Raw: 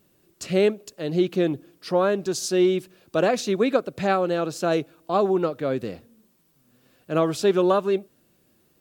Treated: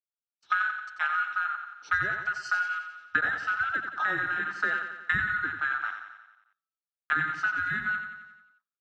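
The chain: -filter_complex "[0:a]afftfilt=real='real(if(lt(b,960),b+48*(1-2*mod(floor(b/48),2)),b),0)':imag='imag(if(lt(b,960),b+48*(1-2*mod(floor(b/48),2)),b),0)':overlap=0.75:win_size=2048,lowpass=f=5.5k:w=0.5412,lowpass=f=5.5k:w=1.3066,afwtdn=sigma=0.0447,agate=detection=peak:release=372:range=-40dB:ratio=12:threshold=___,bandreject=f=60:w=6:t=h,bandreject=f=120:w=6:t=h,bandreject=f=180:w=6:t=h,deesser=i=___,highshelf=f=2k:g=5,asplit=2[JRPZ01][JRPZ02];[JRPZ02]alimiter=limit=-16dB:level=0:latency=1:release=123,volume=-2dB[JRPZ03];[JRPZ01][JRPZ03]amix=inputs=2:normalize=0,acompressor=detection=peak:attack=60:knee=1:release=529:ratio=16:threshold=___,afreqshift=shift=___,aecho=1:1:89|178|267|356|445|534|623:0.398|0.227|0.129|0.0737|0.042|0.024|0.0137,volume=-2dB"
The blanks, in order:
-52dB, 0.7, -26dB, 49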